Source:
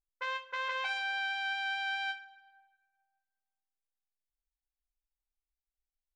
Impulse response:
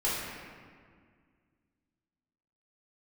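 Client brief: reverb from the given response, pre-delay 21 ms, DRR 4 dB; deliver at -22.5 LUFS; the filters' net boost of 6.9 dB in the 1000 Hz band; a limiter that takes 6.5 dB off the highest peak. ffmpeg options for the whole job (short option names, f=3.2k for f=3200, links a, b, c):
-filter_complex "[0:a]equalizer=f=1k:t=o:g=8.5,alimiter=level_in=0.5dB:limit=-24dB:level=0:latency=1,volume=-0.5dB,asplit=2[a][b];[1:a]atrim=start_sample=2205,adelay=21[c];[b][c]afir=irnorm=-1:irlink=0,volume=-13.5dB[d];[a][d]amix=inputs=2:normalize=0,volume=7.5dB"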